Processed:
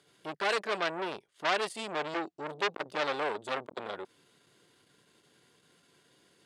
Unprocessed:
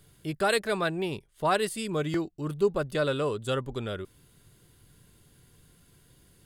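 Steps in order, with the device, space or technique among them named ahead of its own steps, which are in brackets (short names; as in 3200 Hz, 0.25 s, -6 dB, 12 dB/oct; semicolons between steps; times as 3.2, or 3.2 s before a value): public-address speaker with an overloaded transformer (core saturation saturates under 2900 Hz; BPF 320–6300 Hz); gain +1.5 dB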